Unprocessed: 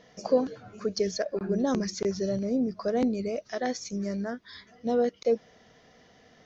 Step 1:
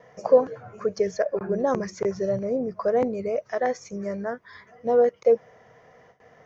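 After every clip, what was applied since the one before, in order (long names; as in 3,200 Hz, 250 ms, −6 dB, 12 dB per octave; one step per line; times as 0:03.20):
high-shelf EQ 5,000 Hz +4 dB
noise gate with hold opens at −48 dBFS
graphic EQ with 10 bands 125 Hz +11 dB, 250 Hz −4 dB, 500 Hz +10 dB, 1,000 Hz +10 dB, 2,000 Hz +7 dB, 4,000 Hz −10 dB
level −4.5 dB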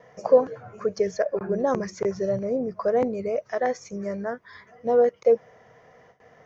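no processing that can be heard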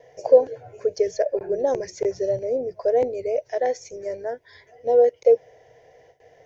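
phaser with its sweep stopped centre 500 Hz, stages 4
level +3 dB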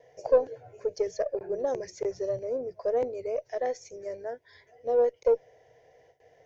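one-sided soft clipper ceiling −4 dBFS
level −6.5 dB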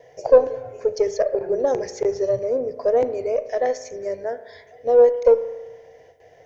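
spring reverb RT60 1.2 s, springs 35 ms, chirp 75 ms, DRR 11.5 dB
level +8.5 dB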